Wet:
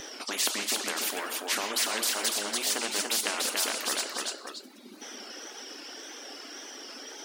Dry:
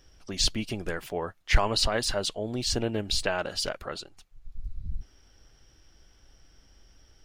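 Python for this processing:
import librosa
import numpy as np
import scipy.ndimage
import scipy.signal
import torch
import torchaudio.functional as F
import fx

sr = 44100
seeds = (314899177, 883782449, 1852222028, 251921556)

p1 = fx.brickwall_highpass(x, sr, low_hz=230.0)
p2 = fx.peak_eq(p1, sr, hz=13000.0, db=-4.0, octaves=0.23)
p3 = fx.rev_double_slope(p2, sr, seeds[0], early_s=0.76, late_s=2.5, knee_db=-28, drr_db=5.0)
p4 = fx.dereverb_blind(p3, sr, rt60_s=1.0)
p5 = fx.wow_flutter(p4, sr, seeds[1], rate_hz=2.1, depth_cents=93.0)
p6 = p5 + fx.echo_feedback(p5, sr, ms=288, feedback_pct=16, wet_db=-9, dry=0)
y = fx.spectral_comp(p6, sr, ratio=4.0)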